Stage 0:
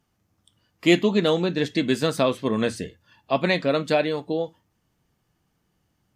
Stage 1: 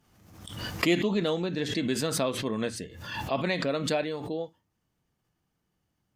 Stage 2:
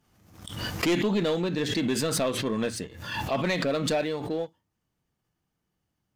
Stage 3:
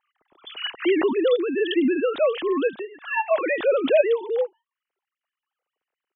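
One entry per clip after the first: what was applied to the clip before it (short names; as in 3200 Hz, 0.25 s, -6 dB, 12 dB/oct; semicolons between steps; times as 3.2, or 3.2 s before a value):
backwards sustainer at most 54 dB/s; gain -7.5 dB
sample leveller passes 1; soft clip -18.5 dBFS, distortion -14 dB
sine-wave speech; gain +5.5 dB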